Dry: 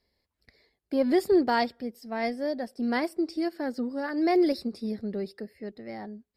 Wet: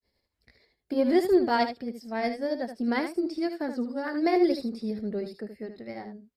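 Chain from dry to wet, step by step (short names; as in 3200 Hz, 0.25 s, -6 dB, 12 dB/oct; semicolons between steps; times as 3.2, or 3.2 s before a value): grains 0.166 s, grains 11/s, spray 13 ms, pitch spread up and down by 0 st; on a send: echo 76 ms -9 dB; on the sum: gain +1.5 dB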